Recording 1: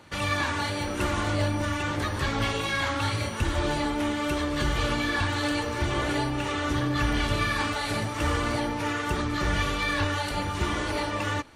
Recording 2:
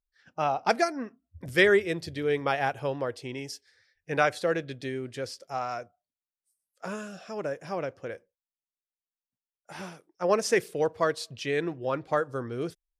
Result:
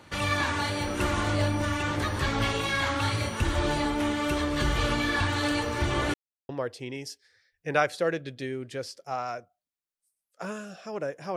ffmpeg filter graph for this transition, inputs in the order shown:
ffmpeg -i cue0.wav -i cue1.wav -filter_complex "[0:a]apad=whole_dur=11.36,atrim=end=11.36,asplit=2[link_01][link_02];[link_01]atrim=end=6.14,asetpts=PTS-STARTPTS,afade=type=out:start_time=6.136:duration=0.004:curve=hsin[link_03];[link_02]atrim=start=6.14:end=6.49,asetpts=PTS-STARTPTS,volume=0[link_04];[1:a]atrim=start=2.92:end=7.79,asetpts=PTS-STARTPTS,afade=type=in:duration=0.004:curve=hsin[link_05];[link_03][link_04][link_05]concat=n=3:v=0:a=1" out.wav

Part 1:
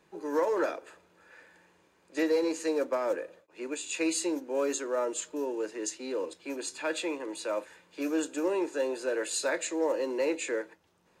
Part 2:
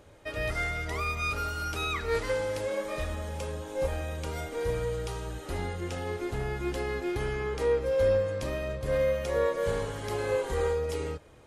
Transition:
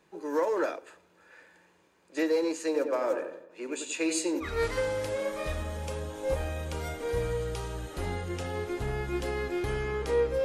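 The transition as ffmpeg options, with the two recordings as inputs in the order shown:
ffmpeg -i cue0.wav -i cue1.wav -filter_complex "[0:a]asettb=1/sr,asplit=3[link_01][link_02][link_03];[link_01]atrim=end=2.654[link_04];[link_02]atrim=start=2.65:end=4.48,asetpts=PTS-STARTPTS,afade=type=in:duration=0.004:curve=qsin,afade=type=out:start_time=1.826:duration=0.004:curve=qsin,asplit=2[link_05][link_06];[link_06]adelay=91,lowpass=frequency=2100:poles=1,volume=-6dB,asplit=2[link_07][link_08];[link_08]adelay=91,lowpass=frequency=2100:poles=1,volume=0.46,asplit=2[link_09][link_10];[link_10]adelay=91,lowpass=frequency=2100:poles=1,volume=0.46,asplit=2[link_11][link_12];[link_12]adelay=91,lowpass=frequency=2100:poles=1,volume=0.46,asplit=2[link_13][link_14];[link_14]adelay=91,lowpass=frequency=2100:poles=1,volume=0.46,asplit=2[link_15][link_16];[link_16]adelay=91,lowpass=frequency=2100:poles=1,volume=0.46[link_17];[link_05][link_07][link_09][link_11][link_13][link_15][link_17]amix=inputs=7:normalize=0,atrim=end_sample=80703[link_18];[link_03]atrim=start=4.476[link_19];[link_04][link_18]acrossfade=duration=0.004:curve1=hsin:curve2=qsin[link_20];[link_20][link_19]acrossfade=duration=0.004:curve1=qsin:curve2=hsin,apad=whole_dur=10.44,atrim=end=10.44,atrim=end=4.48,asetpts=PTS-STARTPTS[link_21];[1:a]atrim=start=1.92:end=7.96,asetpts=PTS-STARTPTS[link_22];[link_21][link_22]acrossfade=duration=0.08:curve1=tri:curve2=tri" out.wav

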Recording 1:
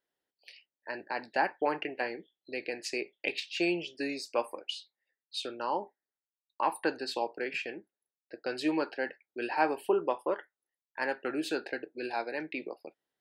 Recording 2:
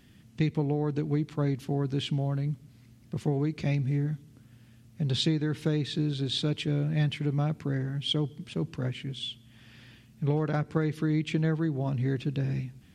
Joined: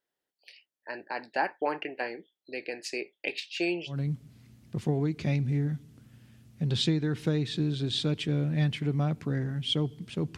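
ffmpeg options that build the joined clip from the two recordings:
ffmpeg -i cue0.wav -i cue1.wav -filter_complex "[0:a]apad=whole_dur=10.37,atrim=end=10.37,atrim=end=4,asetpts=PTS-STARTPTS[link_01];[1:a]atrim=start=2.25:end=8.76,asetpts=PTS-STARTPTS[link_02];[link_01][link_02]acrossfade=duration=0.14:curve1=tri:curve2=tri" out.wav

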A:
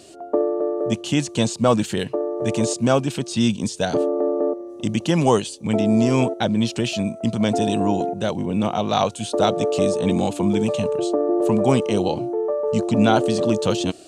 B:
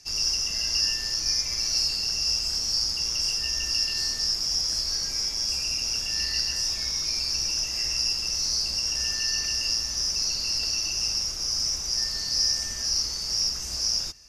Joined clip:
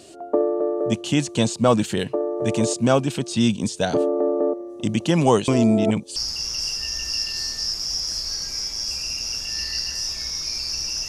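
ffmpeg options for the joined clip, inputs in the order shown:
ffmpeg -i cue0.wav -i cue1.wav -filter_complex "[0:a]apad=whole_dur=11.08,atrim=end=11.08,asplit=2[link_01][link_02];[link_01]atrim=end=5.482[link_03];[link_02]atrim=start=5.478:end=6.162,asetpts=PTS-STARTPTS,areverse[link_04];[1:a]atrim=start=2.768:end=7.69[link_05];[link_03][link_04]acrossfade=duration=0.004:curve1=hsin:curve2=hsin[link_06];[link_06][link_05]acrossfade=duration=0.004:curve1=hsin:curve2=hsin" out.wav

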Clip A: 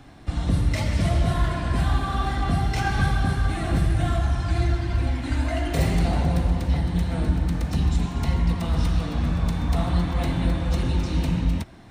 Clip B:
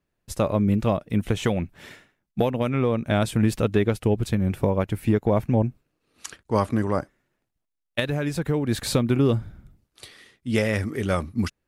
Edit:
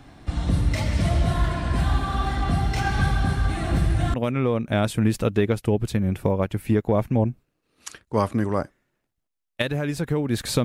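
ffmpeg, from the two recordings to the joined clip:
ffmpeg -i cue0.wav -i cue1.wav -filter_complex "[0:a]apad=whole_dur=10.64,atrim=end=10.64,atrim=end=4.142[link_01];[1:a]atrim=start=2.518:end=9.02[link_02];[link_01][link_02]acrossfade=duration=0.004:curve1=hsin:curve2=hsin" out.wav

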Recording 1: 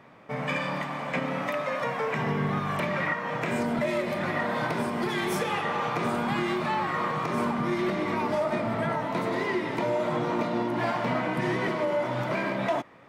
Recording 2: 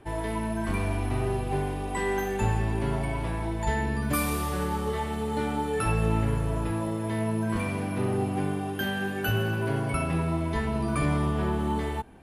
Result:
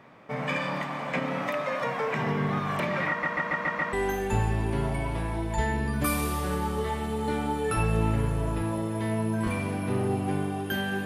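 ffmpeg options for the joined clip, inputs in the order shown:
ffmpeg -i cue0.wav -i cue1.wav -filter_complex "[0:a]apad=whole_dur=11.05,atrim=end=11.05,asplit=6[link_01][link_02][link_03][link_04][link_05][link_06];[link_01]atrim=end=3.232[link_07];[link_02]atrim=start=3.088:end=3.232[link_08];[link_03]atrim=start=3.088:end=3.232[link_09];[link_04]atrim=start=3.088:end=3.232[link_10];[link_05]atrim=start=3.088:end=3.232[link_11];[link_06]atrim=start=3.088:end=3.232[link_12];[1:a]atrim=start=2.018:end=9.14[link_13];[link_07][link_08]acrossfade=duration=0.004:curve1=hsin:curve2=hsin[link_14];[link_14][link_09]acrossfade=duration=0.004:curve1=hsin:curve2=hsin[link_15];[link_15][link_10]acrossfade=duration=0.004:curve1=hsin:curve2=hsin[link_16];[link_16][link_11]acrossfade=duration=0.004:curve1=hsin:curve2=hsin[link_17];[link_17][link_12]acrossfade=duration=0.004:curve1=hsin:curve2=hsin[link_18];[link_18][link_13]acrossfade=duration=0.004:curve1=hsin:curve2=hsin" out.wav

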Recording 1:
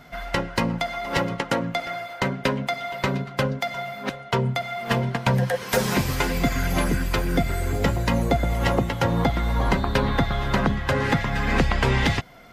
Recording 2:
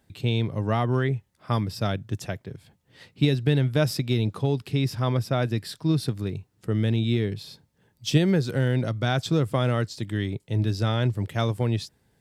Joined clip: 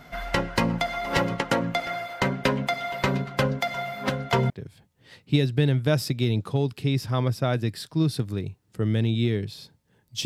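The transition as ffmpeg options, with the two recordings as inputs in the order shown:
ffmpeg -i cue0.wav -i cue1.wav -filter_complex "[0:a]asplit=3[link_01][link_02][link_03];[link_01]afade=type=out:start_time=4:duration=0.02[link_04];[link_02]aecho=1:1:688:0.447,afade=type=in:start_time=4:duration=0.02,afade=type=out:start_time=4.5:duration=0.02[link_05];[link_03]afade=type=in:start_time=4.5:duration=0.02[link_06];[link_04][link_05][link_06]amix=inputs=3:normalize=0,apad=whole_dur=10.25,atrim=end=10.25,atrim=end=4.502[link_07];[1:a]atrim=start=2.388:end=8.14[link_08];[link_07][link_08]acrossfade=duration=0.004:curve1=hsin:curve2=hsin" out.wav

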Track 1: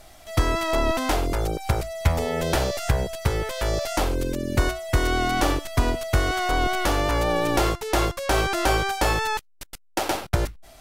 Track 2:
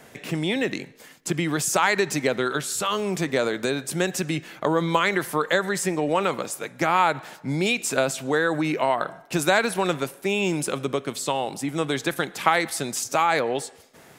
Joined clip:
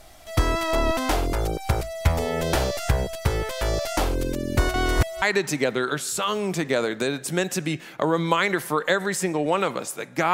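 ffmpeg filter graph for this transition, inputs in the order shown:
ffmpeg -i cue0.wav -i cue1.wav -filter_complex "[0:a]apad=whole_dur=10.33,atrim=end=10.33,asplit=2[link_01][link_02];[link_01]atrim=end=4.742[link_03];[link_02]atrim=start=4.738:end=5.222,asetpts=PTS-STARTPTS,areverse[link_04];[1:a]atrim=start=1.848:end=6.96[link_05];[link_03][link_04]acrossfade=duration=0.004:curve1=hsin:curve2=hsin[link_06];[link_06][link_05]acrossfade=duration=0.004:curve1=hsin:curve2=hsin" out.wav

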